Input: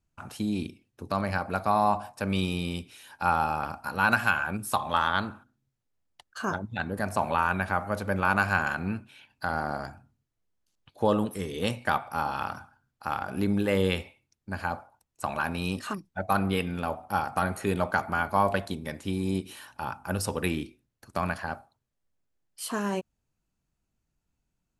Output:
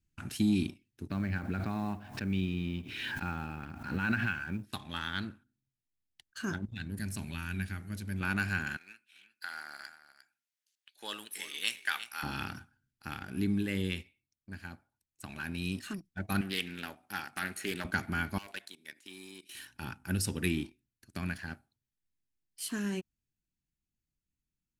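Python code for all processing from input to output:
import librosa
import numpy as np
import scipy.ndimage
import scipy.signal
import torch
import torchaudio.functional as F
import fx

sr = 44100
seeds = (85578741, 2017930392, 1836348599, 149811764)

y = fx.chain(x, sr, fx.air_absorb(metres=350.0),
    fx.quant_companded(bits=8),
    fx.pre_swell(db_per_s=46.0), at=(1.1, 4.73))
y = fx.chain(y, sr, fx.peak_eq(hz=800.0, db=-13.5, octaves=2.8),
    fx.hum_notches(base_hz=60, count=9), at=(6.65, 8.21))
y = fx.chain(y, sr, fx.highpass(hz=1200.0, slope=12),
    fx.echo_single(ms=353, db=-12.5), at=(8.77, 12.23))
y = fx.chain(y, sr, fx.highpass(hz=680.0, slope=6),
    fx.doppler_dist(depth_ms=0.23), at=(16.41, 17.85))
y = fx.chain(y, sr, fx.highpass(hz=630.0, slope=12),
    fx.overload_stage(gain_db=23.5),
    fx.level_steps(step_db=12), at=(18.38, 19.55))
y = fx.band_shelf(y, sr, hz=770.0, db=-15.5, octaves=1.7)
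y = fx.rider(y, sr, range_db=10, speed_s=2.0)
y = fx.leveller(y, sr, passes=1)
y = y * librosa.db_to_amplitude(-6.0)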